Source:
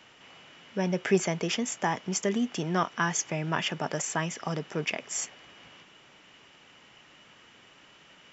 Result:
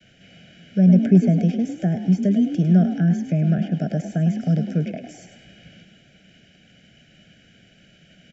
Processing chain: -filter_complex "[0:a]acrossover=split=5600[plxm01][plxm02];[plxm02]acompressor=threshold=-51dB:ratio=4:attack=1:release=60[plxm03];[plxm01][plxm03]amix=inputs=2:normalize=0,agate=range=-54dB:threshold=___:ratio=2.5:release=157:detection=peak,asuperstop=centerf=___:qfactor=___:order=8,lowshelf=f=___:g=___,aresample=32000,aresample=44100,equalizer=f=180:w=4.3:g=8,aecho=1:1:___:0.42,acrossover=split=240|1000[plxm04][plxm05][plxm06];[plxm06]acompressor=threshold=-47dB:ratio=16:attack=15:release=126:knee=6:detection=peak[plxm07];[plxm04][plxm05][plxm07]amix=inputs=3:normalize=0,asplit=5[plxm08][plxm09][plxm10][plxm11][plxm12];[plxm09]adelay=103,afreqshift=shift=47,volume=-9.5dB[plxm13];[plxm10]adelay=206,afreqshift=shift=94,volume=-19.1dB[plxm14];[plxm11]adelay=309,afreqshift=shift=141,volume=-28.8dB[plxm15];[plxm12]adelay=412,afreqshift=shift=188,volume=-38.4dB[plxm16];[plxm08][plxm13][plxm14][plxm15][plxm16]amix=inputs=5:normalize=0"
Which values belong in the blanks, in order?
-53dB, 1000, 1.4, 340, 11.5, 1.3